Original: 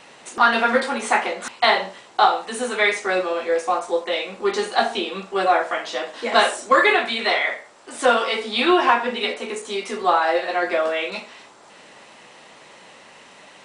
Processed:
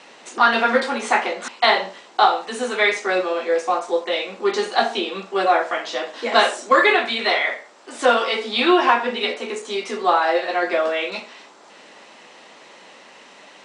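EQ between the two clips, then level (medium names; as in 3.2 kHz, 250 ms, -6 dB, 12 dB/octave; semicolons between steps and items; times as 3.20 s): Chebyshev band-pass 240–6400 Hz, order 2; +1.5 dB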